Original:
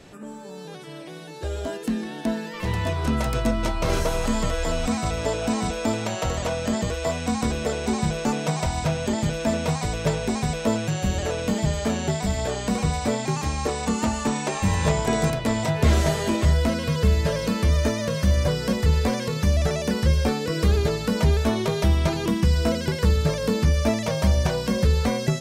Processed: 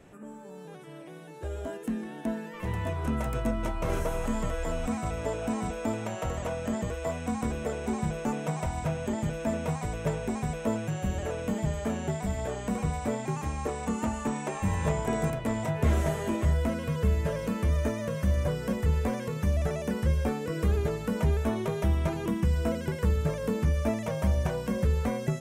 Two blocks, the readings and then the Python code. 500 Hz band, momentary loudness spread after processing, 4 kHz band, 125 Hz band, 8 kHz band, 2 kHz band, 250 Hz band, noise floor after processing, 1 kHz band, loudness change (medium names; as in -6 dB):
-6.0 dB, 6 LU, -14.5 dB, -6.0 dB, -10.5 dB, -8.0 dB, -6.0 dB, -44 dBFS, -6.5 dB, -6.5 dB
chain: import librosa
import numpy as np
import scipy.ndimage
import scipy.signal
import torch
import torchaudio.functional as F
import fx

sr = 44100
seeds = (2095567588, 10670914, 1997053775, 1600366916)

y = fx.peak_eq(x, sr, hz=4500.0, db=-13.5, octaves=0.94)
y = F.gain(torch.from_numpy(y), -6.0).numpy()